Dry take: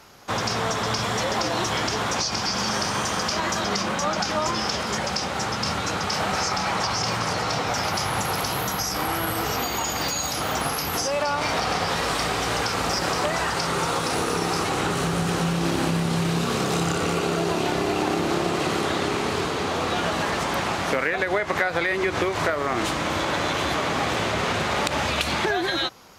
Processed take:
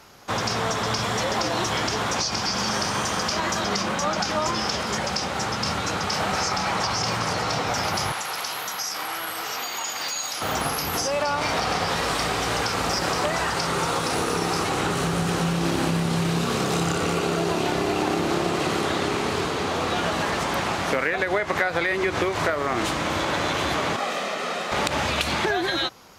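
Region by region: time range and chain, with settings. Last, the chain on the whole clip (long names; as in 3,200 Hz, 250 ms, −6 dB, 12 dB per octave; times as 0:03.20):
0:08.12–0:10.42: high-pass filter 1,300 Hz 6 dB per octave + high-shelf EQ 11,000 Hz −6.5 dB
0:23.96–0:24.72: Butterworth high-pass 190 Hz + comb filter 1.6 ms, depth 46% + micro pitch shift up and down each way 28 cents
whole clip: no processing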